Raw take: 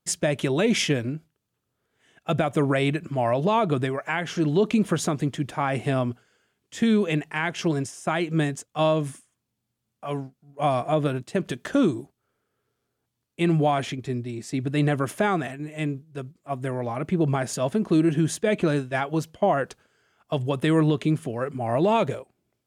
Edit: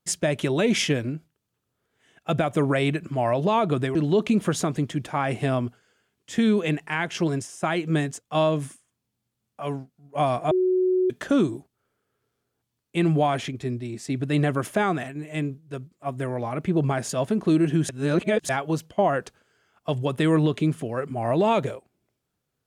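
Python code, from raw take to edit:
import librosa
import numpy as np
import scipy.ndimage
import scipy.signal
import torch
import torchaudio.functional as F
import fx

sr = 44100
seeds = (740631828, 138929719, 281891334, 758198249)

y = fx.edit(x, sr, fx.cut(start_s=3.95, length_s=0.44),
    fx.bleep(start_s=10.95, length_s=0.59, hz=369.0, db=-18.0),
    fx.reverse_span(start_s=18.33, length_s=0.6), tone=tone)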